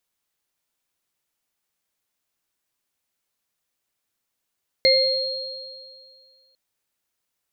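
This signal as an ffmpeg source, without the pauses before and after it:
-f lavfi -i "aevalsrc='0.168*pow(10,-3*t/1.87)*sin(2*PI*530*t)+0.1*pow(10,-3*t/0.53)*sin(2*PI*2110*t)+0.188*pow(10,-3*t/2.21)*sin(2*PI*4240*t)':d=1.7:s=44100"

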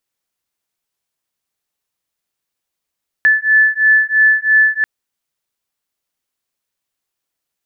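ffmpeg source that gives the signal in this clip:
-f lavfi -i "aevalsrc='0.251*(sin(2*PI*1740*t)+sin(2*PI*1743*t))':d=1.59:s=44100"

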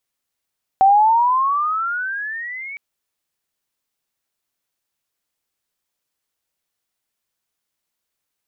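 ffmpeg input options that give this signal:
-f lavfi -i "aevalsrc='pow(10,(-8-21*t/1.96)/20)*sin(2*PI*760*1.96/(19*log(2)/12)*(exp(19*log(2)/12*t/1.96)-1))':d=1.96:s=44100"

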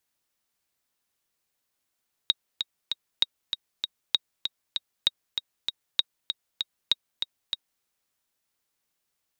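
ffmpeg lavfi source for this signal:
-f lavfi -i "aevalsrc='pow(10,(-7-7*gte(mod(t,3*60/195),60/195))/20)*sin(2*PI*3780*mod(t,60/195))*exp(-6.91*mod(t,60/195)/0.03)':d=5.53:s=44100"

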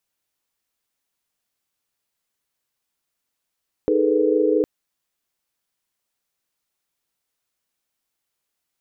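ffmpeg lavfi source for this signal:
-f lavfi -i "aevalsrc='0.0891*(sin(2*PI*311.13*t)+sin(2*PI*415.3*t)+sin(2*PI*440*t)+sin(2*PI*493.88*t))':d=0.76:s=44100"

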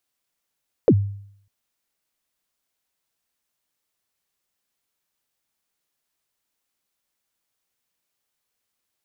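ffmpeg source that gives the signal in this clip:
-f lavfi -i "aevalsrc='0.398*pow(10,-3*t/0.65)*sin(2*PI*(560*0.06/log(100/560)*(exp(log(100/560)*min(t,0.06)/0.06)-1)+100*max(t-0.06,0)))':d=0.6:s=44100"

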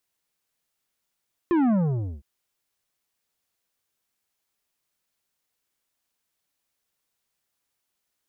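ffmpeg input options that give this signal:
-f lavfi -i "aevalsrc='0.112*clip((0.71-t)/0.51,0,1)*tanh(3.16*sin(2*PI*360*0.71/log(65/360)*(exp(log(65/360)*t/0.71)-1)))/tanh(3.16)':d=0.71:s=44100"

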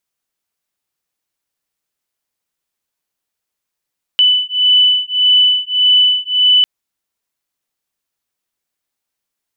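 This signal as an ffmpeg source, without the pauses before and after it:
-f lavfi -i "aevalsrc='0.251*(sin(2*PI*2990*t)+sin(2*PI*2991.7*t))':d=2.45:s=44100"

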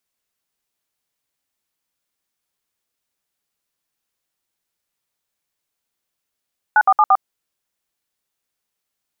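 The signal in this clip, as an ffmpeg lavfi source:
-f lavfi -i "aevalsrc='0.266*clip(min(mod(t,0.114),0.052-mod(t,0.114))/0.002,0,1)*(eq(floor(t/0.114),0)*(sin(2*PI*852*mod(t,0.114))+sin(2*PI*1477*mod(t,0.114)))+eq(floor(t/0.114),1)*(sin(2*PI*770*mod(t,0.114))+sin(2*PI*1209*mod(t,0.114)))+eq(floor(t/0.114),2)*(sin(2*PI*852*mod(t,0.114))+sin(2*PI*1209*mod(t,0.114)))+eq(floor(t/0.114),3)*(sin(2*PI*770*mod(t,0.114))+sin(2*PI*1209*mod(t,0.114))))':d=0.456:s=44100"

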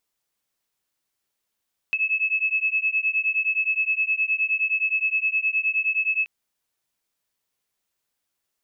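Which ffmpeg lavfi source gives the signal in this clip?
-f lavfi -i "aevalsrc='0.0668*(sin(2*PI*2590*t)+sin(2*PI*2599.6*t))':d=4.33:s=44100"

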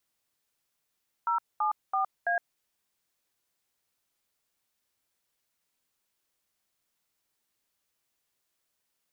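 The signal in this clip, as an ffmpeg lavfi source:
-f lavfi -i "aevalsrc='0.0447*clip(min(mod(t,0.332),0.114-mod(t,0.332))/0.002,0,1)*(eq(floor(t/0.332),0)*(sin(2*PI*941*mod(t,0.332))+sin(2*PI*1336*mod(t,0.332)))+eq(floor(t/0.332),1)*(sin(2*PI*852*mod(t,0.332))+sin(2*PI*1209*mod(t,0.332)))+eq(floor(t/0.332),2)*(sin(2*PI*770*mod(t,0.332))+sin(2*PI*1209*mod(t,0.332)))+eq(floor(t/0.332),3)*(sin(2*PI*697*mod(t,0.332))+sin(2*PI*1633*mod(t,0.332))))':d=1.328:s=44100"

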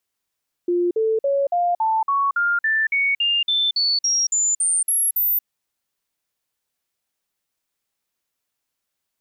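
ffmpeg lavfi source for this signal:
-f lavfi -i "aevalsrc='0.15*clip(min(mod(t,0.28),0.23-mod(t,0.28))/0.005,0,1)*sin(2*PI*351*pow(2,floor(t/0.28)/3)*mod(t,0.28))':d=4.76:s=44100"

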